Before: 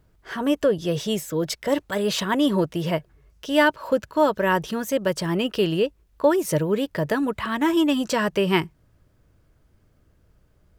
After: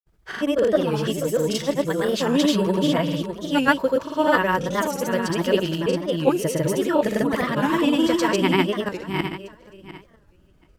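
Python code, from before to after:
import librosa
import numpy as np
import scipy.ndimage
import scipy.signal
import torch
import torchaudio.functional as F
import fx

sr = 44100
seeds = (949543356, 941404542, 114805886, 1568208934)

y = fx.reverse_delay_fb(x, sr, ms=330, feedback_pct=42, wet_db=-0.5)
y = fx.granulator(y, sr, seeds[0], grain_ms=100.0, per_s=20.0, spray_ms=100.0, spread_st=0)
y = fx.record_warp(y, sr, rpm=45.0, depth_cents=160.0)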